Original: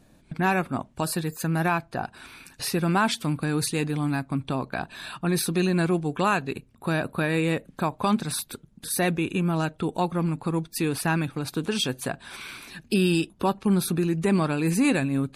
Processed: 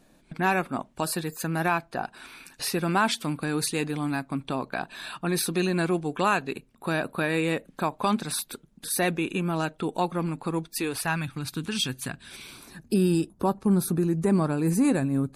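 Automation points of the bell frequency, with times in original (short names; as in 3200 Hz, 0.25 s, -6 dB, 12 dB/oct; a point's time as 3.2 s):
bell -12.5 dB 1.4 oct
10.63 s 86 Hz
11.39 s 560 Hz
12.09 s 560 Hz
12.72 s 2900 Hz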